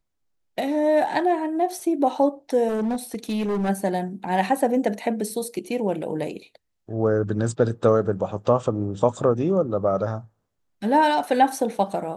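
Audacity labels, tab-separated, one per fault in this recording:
2.680000	3.700000	clipping −21 dBFS

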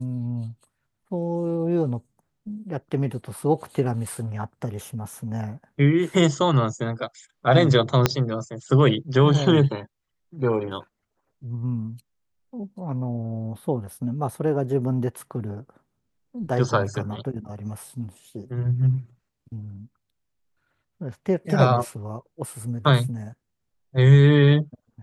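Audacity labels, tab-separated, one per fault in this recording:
8.060000	8.060000	click −2 dBFS

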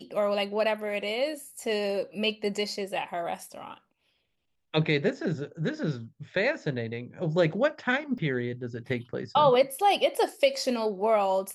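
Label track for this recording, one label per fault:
8.180000	8.180000	drop-out 2.3 ms

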